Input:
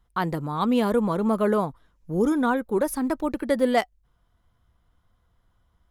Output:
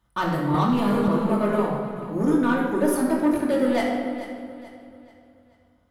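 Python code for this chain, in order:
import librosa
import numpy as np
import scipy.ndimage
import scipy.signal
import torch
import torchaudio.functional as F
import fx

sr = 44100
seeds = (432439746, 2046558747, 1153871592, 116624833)

p1 = scipy.signal.sosfilt(scipy.signal.butter(4, 64.0, 'highpass', fs=sr, output='sos'), x)
p2 = fx.rider(p1, sr, range_db=10, speed_s=0.5)
p3 = p1 + F.gain(torch.from_numpy(p2), 2.5).numpy()
p4 = fx.chorus_voices(p3, sr, voices=6, hz=0.62, base_ms=22, depth_ms=2.1, mix_pct=35)
p5 = 10.0 ** (-14.0 / 20.0) * np.tanh(p4 / 10.0 ** (-14.0 / 20.0))
p6 = p5 + fx.echo_feedback(p5, sr, ms=435, feedback_pct=39, wet_db=-13.5, dry=0)
p7 = fx.room_shoebox(p6, sr, seeds[0], volume_m3=1900.0, walls='mixed', distance_m=2.6)
p8 = fx.band_squash(p7, sr, depth_pct=100, at=(0.54, 1.08))
y = F.gain(torch.from_numpy(p8), -6.0).numpy()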